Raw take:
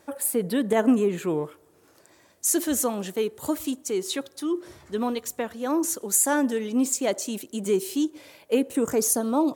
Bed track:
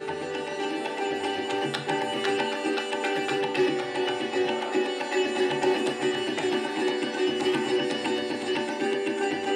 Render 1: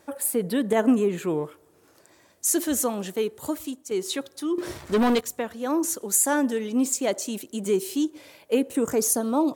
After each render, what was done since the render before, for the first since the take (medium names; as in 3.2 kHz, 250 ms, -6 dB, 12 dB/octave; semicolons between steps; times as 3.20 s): 3.28–3.91 s: fade out, to -8 dB; 4.58–5.21 s: waveshaping leveller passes 3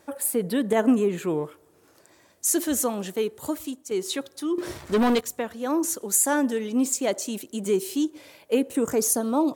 no audible change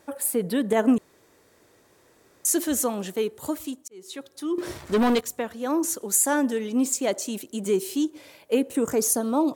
0.98–2.45 s: room tone; 3.88–4.58 s: fade in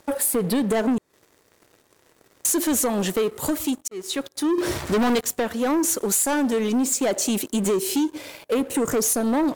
compression 4:1, threshold -27 dBFS, peak gain reduction 10.5 dB; waveshaping leveller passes 3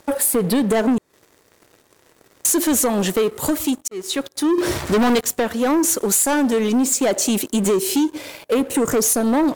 trim +4 dB